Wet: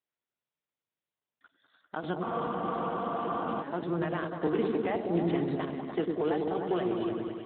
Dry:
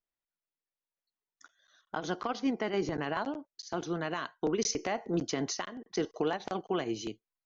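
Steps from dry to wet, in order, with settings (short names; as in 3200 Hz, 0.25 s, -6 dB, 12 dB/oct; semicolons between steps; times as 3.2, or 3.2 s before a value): repeats that get brighter 0.1 s, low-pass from 400 Hz, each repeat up 1 oct, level 0 dB; spectral freeze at 2.26, 1.36 s; Speex 11 kbps 8000 Hz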